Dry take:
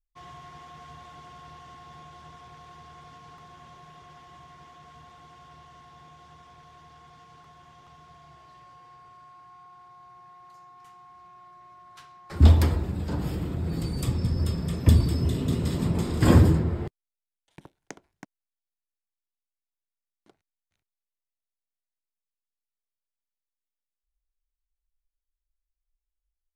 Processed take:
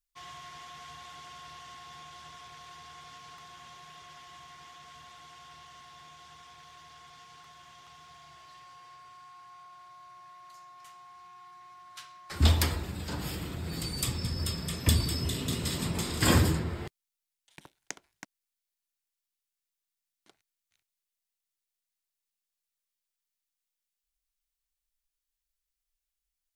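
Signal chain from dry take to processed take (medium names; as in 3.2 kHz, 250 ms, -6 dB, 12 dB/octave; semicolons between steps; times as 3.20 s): tilt shelf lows -8 dB, about 1.2 kHz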